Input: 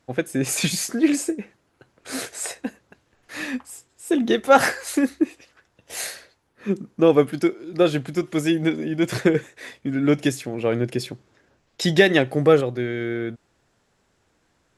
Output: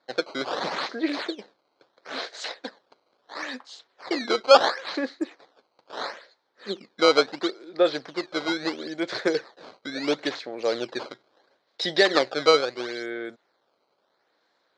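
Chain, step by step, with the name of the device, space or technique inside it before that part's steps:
circuit-bent sampling toy (sample-and-hold swept by an LFO 14×, swing 160% 0.74 Hz; loudspeaker in its box 480–5,100 Hz, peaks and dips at 540 Hz +3 dB, 2,700 Hz −8 dB, 4,100 Hz +8 dB)
level −1 dB

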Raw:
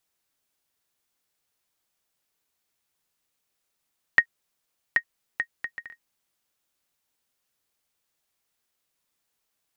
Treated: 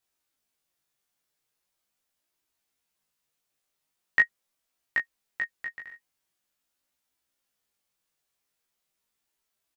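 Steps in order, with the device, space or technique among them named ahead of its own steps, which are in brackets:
double-tracked vocal (double-tracking delay 15 ms −4 dB; chorus effect 0.42 Hz, delay 18 ms, depth 3.9 ms)
level −1 dB

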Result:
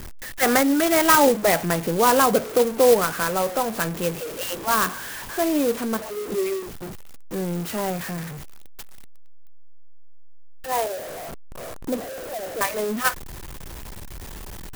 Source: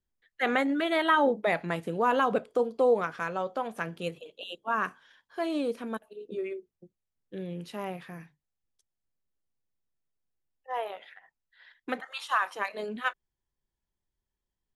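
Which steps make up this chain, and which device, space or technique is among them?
0:10.86–0:12.61: Butterworth low-pass 690 Hz 96 dB per octave
early CD player with a faulty converter (converter with a step at zero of −35.5 dBFS; converter with an unsteady clock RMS 0.068 ms)
level +7 dB

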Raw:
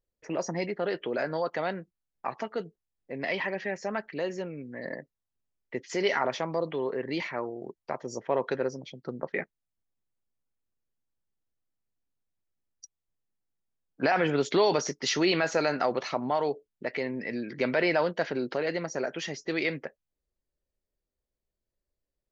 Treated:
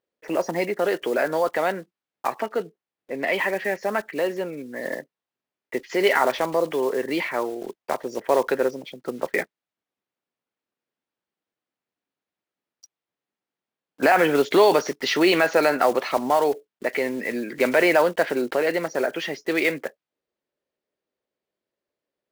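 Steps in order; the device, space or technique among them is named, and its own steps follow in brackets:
early digital voice recorder (band-pass filter 260–3,500 Hz; one scale factor per block 5 bits)
0:02.40–0:03.33: high-shelf EQ 4,400 Hz −6 dB
level +8 dB

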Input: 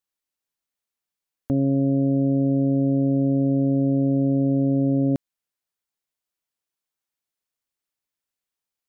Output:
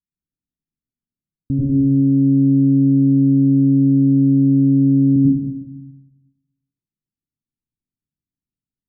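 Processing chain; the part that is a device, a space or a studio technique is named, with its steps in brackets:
next room (low-pass filter 260 Hz 24 dB per octave; convolution reverb RT60 0.95 s, pre-delay 81 ms, DRR −5.5 dB)
level +5 dB

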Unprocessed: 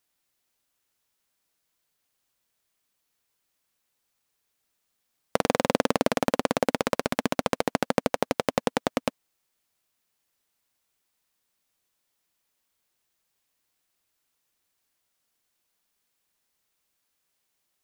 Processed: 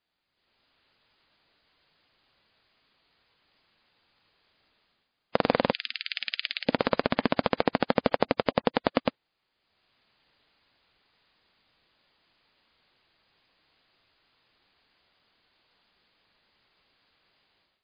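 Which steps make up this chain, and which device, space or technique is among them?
0:05.72–0:06.69: inverse Chebyshev high-pass filter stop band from 1,100 Hz, stop band 40 dB
low-bitrate web radio (automatic gain control gain up to 14 dB; brickwall limiter −4 dBFS, peak gain reduction 3.5 dB; MP3 24 kbit/s 11,025 Hz)

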